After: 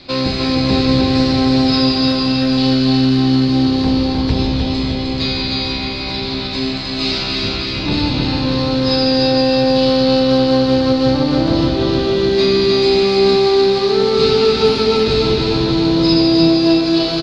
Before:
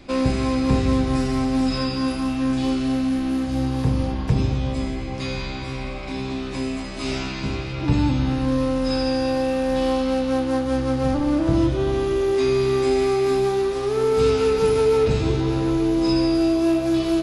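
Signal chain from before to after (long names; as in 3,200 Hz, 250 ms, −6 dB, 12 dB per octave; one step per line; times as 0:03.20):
sub-octave generator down 1 octave, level −1 dB
low-pass with resonance 4,300 Hz, resonance Q 6.6
low-shelf EQ 150 Hz −9.5 dB
on a send: repeating echo 306 ms, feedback 59%, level −4 dB
on the sum: level +3.5 dB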